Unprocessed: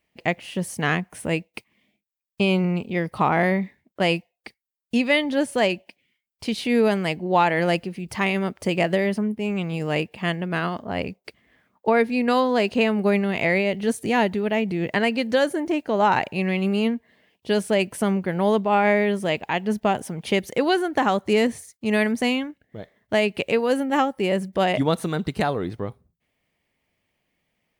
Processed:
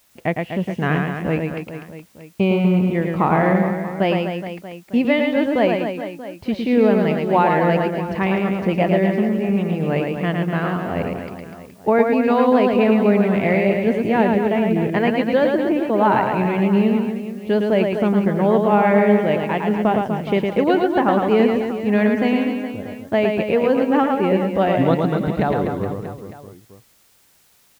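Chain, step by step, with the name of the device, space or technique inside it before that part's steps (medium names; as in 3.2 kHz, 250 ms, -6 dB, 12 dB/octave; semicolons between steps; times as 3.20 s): cassette deck with a dirty head (tape spacing loss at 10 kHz 34 dB; wow and flutter; white noise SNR 38 dB); reverse bouncing-ball echo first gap 110 ms, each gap 1.25×, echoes 5; trim +4.5 dB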